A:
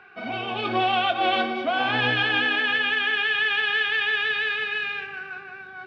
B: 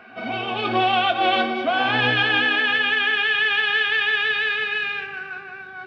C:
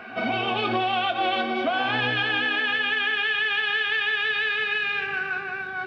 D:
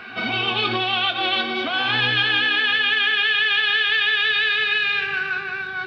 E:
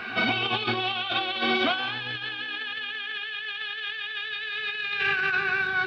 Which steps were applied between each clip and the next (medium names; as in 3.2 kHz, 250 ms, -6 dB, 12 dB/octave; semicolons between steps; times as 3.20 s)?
reverse echo 174 ms -20.5 dB; trim +3 dB
compression 5:1, threshold -28 dBFS, peak gain reduction 11 dB; trim +5.5 dB
fifteen-band graphic EQ 250 Hz -5 dB, 630 Hz -11 dB, 4 kHz +8 dB; trim +4 dB
compressor with a negative ratio -25 dBFS, ratio -0.5; trim -2.5 dB